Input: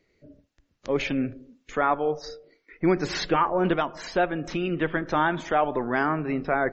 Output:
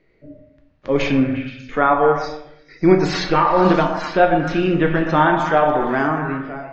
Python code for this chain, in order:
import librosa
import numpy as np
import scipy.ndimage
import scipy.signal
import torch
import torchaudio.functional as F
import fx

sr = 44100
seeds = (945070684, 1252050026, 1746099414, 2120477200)

p1 = fx.fade_out_tail(x, sr, length_s=1.25)
p2 = fx.env_lowpass(p1, sr, base_hz=2700.0, full_db=-19.0)
p3 = fx.rider(p2, sr, range_db=4, speed_s=0.5)
p4 = p2 + (p3 * 10.0 ** (-3.0 / 20.0))
p5 = fx.quant_dither(p4, sr, seeds[0], bits=12, dither='triangular', at=(5.58, 6.08))
p6 = fx.hpss(p5, sr, part='harmonic', gain_db=5)
p7 = p6 + fx.echo_stepped(p6, sr, ms=118, hz=800.0, octaves=0.7, feedback_pct=70, wet_db=-4, dry=0)
p8 = fx.room_shoebox(p7, sr, seeds[1], volume_m3=130.0, walls='mixed', distance_m=0.54)
y = p8 * 10.0 ** (-1.0 / 20.0)